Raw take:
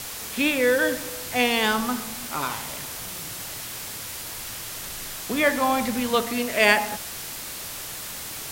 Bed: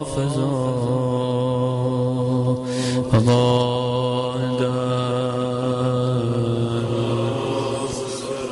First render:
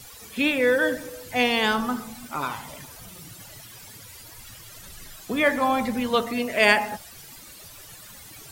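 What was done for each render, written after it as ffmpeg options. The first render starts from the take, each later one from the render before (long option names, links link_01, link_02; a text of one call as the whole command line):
ffmpeg -i in.wav -af "afftdn=noise_reduction=14:noise_floor=-35" out.wav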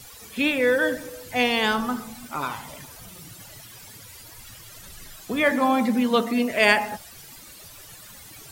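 ffmpeg -i in.wav -filter_complex "[0:a]asettb=1/sr,asplit=3[link_01][link_02][link_03];[link_01]atrim=end=5.514[link_04];[link_02]atrim=start=5.51:end=6.51,asetpts=PTS-STARTPTS,afade=type=in:duration=0.004:curve=qsin,afade=type=out:start_time=0.996:duration=0.004:curve=qsin,highpass=frequency=210:width_type=q:width=1.9[link_05];[link_03]atrim=start=6.506[link_06];[link_04][link_05]acrossfade=duration=0.004:curve1=hsin:curve2=qsin[link_07];[link_07][link_06]acrossfade=duration=0.004:curve1=qsin:curve2=hsin" out.wav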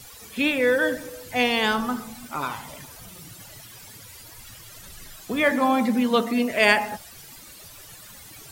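ffmpeg -i in.wav -filter_complex "[0:a]asplit=3[link_01][link_02][link_03];[link_01]afade=type=out:start_time=3.5:duration=0.02[link_04];[link_02]acrusher=bits=8:mode=log:mix=0:aa=0.000001,afade=type=in:start_time=3.5:duration=0.02,afade=type=out:start_time=5.45:duration=0.02[link_05];[link_03]afade=type=in:start_time=5.45:duration=0.02[link_06];[link_04][link_05][link_06]amix=inputs=3:normalize=0" out.wav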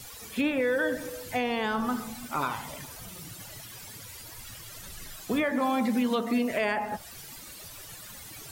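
ffmpeg -i in.wav -filter_complex "[0:a]acrossover=split=1800[link_01][link_02];[link_01]alimiter=limit=-19.5dB:level=0:latency=1:release=151[link_03];[link_02]acompressor=threshold=-38dB:ratio=6[link_04];[link_03][link_04]amix=inputs=2:normalize=0" out.wav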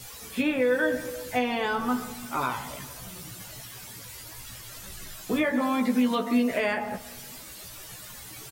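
ffmpeg -i in.wav -filter_complex "[0:a]asplit=2[link_01][link_02];[link_02]adelay=16,volume=-4dB[link_03];[link_01][link_03]amix=inputs=2:normalize=0,aecho=1:1:174|348|522|696|870:0.0891|0.0517|0.03|0.0174|0.0101" out.wav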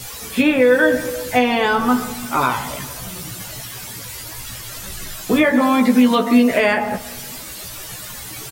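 ffmpeg -i in.wav -af "volume=10.5dB" out.wav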